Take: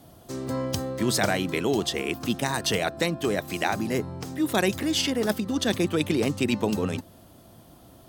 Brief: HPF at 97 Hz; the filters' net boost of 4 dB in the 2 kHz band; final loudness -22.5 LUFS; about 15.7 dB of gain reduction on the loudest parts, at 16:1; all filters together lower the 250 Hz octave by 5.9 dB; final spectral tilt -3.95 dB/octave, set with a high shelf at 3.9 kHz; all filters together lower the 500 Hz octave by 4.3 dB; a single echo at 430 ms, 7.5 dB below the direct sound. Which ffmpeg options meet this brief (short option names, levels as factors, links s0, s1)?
-af "highpass=97,equalizer=f=250:t=o:g=-6.5,equalizer=f=500:t=o:g=-3.5,equalizer=f=2000:t=o:g=6.5,highshelf=f=3900:g=-5,acompressor=threshold=0.0178:ratio=16,aecho=1:1:430:0.422,volume=6.68"